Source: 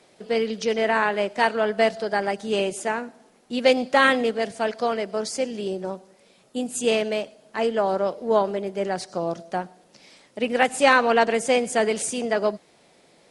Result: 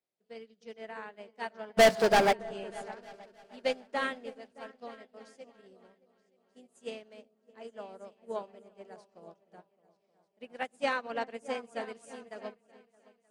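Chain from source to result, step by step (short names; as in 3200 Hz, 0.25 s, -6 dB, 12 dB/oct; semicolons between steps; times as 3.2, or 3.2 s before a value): 1.77–2.33 sample leveller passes 5; repeats that get brighter 0.309 s, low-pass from 400 Hz, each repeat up 2 oct, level -6 dB; upward expander 2.5:1, over -31 dBFS; gain -6.5 dB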